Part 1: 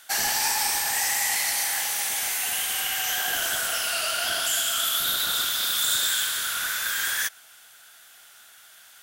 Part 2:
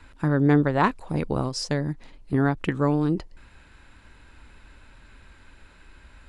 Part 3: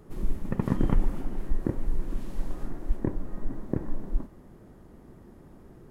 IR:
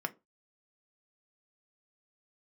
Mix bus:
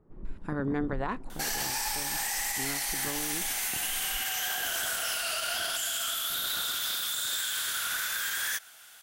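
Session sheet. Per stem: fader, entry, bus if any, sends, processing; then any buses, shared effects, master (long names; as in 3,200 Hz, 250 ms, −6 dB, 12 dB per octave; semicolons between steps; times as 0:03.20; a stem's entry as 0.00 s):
−2.0 dB, 1.30 s, no send, no processing
−13.5 dB, 0.25 s, send −10.5 dB, no processing
−15.5 dB, 0.00 s, no send, low-pass filter 1,500 Hz 12 dB per octave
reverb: on, RT60 0.25 s, pre-delay 3 ms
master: speech leveller within 4 dB 0.5 s; brickwall limiter −22 dBFS, peak gain reduction 8.5 dB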